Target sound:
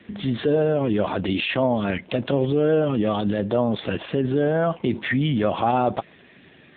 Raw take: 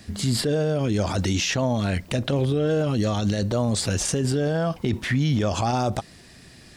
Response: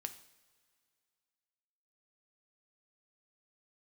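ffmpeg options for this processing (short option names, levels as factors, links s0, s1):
-filter_complex "[0:a]asplit=3[s0][s1][s2];[s0]afade=t=out:st=1.62:d=0.02[s3];[s1]highpass=f=44:p=1,afade=t=in:st=1.62:d=0.02,afade=t=out:st=4.04:d=0.02[s4];[s2]afade=t=in:st=4.04:d=0.02[s5];[s3][s4][s5]amix=inputs=3:normalize=0,equalizer=f=77:w=0.73:g=-14,volume=1.88" -ar 8000 -c:a libopencore_amrnb -b:a 6700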